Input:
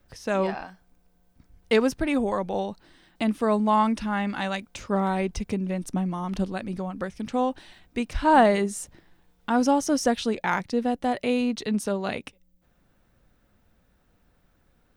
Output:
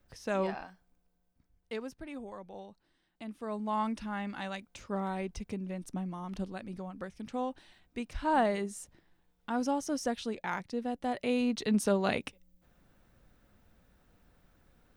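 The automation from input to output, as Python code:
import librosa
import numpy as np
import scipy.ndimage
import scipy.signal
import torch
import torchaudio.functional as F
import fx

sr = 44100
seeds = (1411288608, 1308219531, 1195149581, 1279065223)

y = fx.gain(x, sr, db=fx.line((0.56, -6.5), (1.81, -18.5), (3.25, -18.5), (3.84, -10.0), (10.86, -10.0), (11.9, -0.5)))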